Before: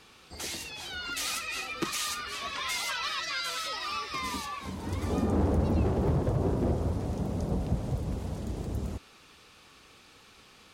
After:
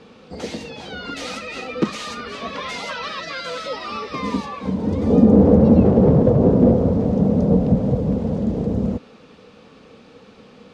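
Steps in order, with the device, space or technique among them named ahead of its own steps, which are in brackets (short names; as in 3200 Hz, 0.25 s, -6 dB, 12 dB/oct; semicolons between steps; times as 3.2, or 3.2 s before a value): 4.69–5.45 dynamic EQ 1500 Hz, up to -4 dB, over -47 dBFS, Q 0.86; inside a cardboard box (LPF 5200 Hz 12 dB/oct; small resonant body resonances 220/470 Hz, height 18 dB, ringing for 25 ms); gain +1.5 dB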